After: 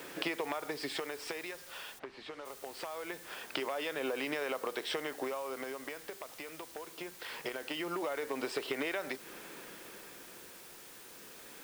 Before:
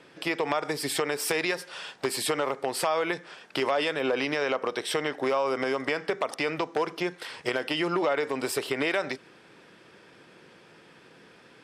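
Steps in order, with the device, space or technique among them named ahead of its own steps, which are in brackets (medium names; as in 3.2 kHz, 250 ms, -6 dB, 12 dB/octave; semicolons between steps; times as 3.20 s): medium wave at night (band-pass 200–4500 Hz; compression 10:1, threshold -39 dBFS, peak gain reduction 17.5 dB; tremolo 0.23 Hz, depth 70%; whistle 9 kHz -74 dBFS; white noise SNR 13 dB); 1.98–2.44 s: low-pass 2.2 kHz -> 4.5 kHz 12 dB/octave; trim +6.5 dB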